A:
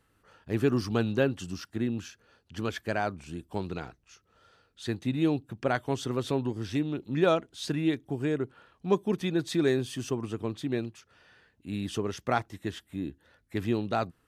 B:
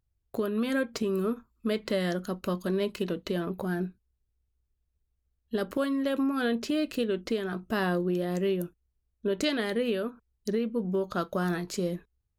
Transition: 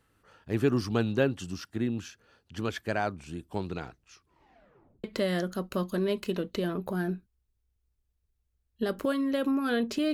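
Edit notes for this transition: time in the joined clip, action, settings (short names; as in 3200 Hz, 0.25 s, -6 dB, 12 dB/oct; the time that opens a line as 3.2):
A
4.1 tape stop 0.94 s
5.04 switch to B from 1.76 s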